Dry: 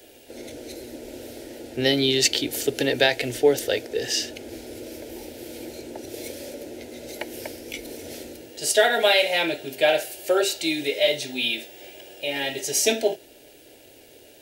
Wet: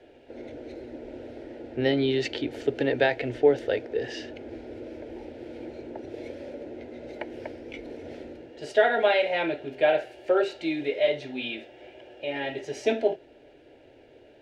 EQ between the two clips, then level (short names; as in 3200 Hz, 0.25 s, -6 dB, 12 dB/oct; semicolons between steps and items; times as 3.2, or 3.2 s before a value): LPF 1900 Hz 12 dB/oct; -1.5 dB